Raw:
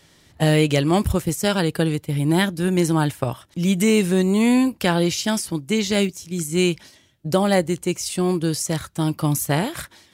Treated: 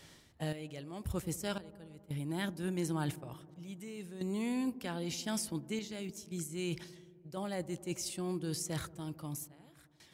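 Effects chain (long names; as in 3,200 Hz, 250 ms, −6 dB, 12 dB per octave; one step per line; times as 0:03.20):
reversed playback
downward compressor 5 to 1, threshold −32 dBFS, peak gain reduction 17 dB
reversed playback
sample-and-hold tremolo 1.9 Hz, depth 95%
delay with a low-pass on its return 88 ms, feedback 79%, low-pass 800 Hz, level −18 dB
level −2 dB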